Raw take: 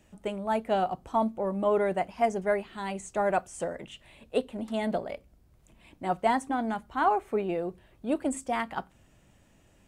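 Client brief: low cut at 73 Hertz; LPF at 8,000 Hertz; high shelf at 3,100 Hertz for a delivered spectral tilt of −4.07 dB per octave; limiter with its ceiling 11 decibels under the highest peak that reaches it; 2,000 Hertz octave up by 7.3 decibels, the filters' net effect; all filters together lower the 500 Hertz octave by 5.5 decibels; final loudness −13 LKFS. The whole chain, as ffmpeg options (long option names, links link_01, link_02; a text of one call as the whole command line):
ffmpeg -i in.wav -af "highpass=73,lowpass=8000,equalizer=frequency=500:width_type=o:gain=-8.5,equalizer=frequency=2000:width_type=o:gain=8,highshelf=frequency=3100:gain=5.5,volume=22dB,alimiter=limit=-2dB:level=0:latency=1" out.wav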